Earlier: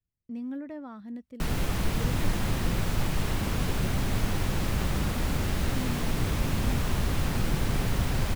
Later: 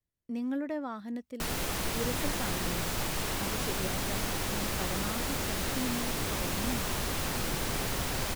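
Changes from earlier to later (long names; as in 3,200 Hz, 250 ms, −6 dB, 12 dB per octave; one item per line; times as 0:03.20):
speech +7.0 dB
master: add bass and treble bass −10 dB, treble +5 dB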